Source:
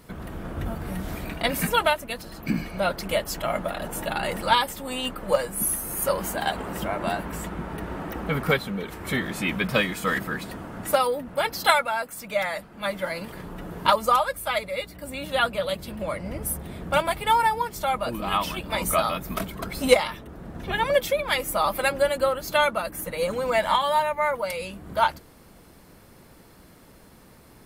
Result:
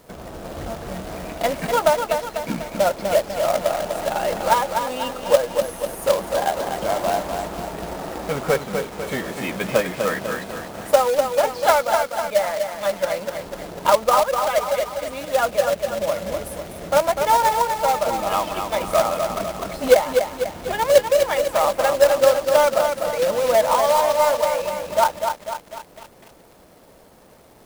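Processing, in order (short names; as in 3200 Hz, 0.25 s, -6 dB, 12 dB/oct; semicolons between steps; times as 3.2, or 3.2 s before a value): bell 620 Hz +12 dB 1.5 oct; treble ducked by the level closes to 2100 Hz, closed at -11.5 dBFS; companded quantiser 4-bit; lo-fi delay 0.248 s, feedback 55%, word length 6-bit, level -5.5 dB; gain -4.5 dB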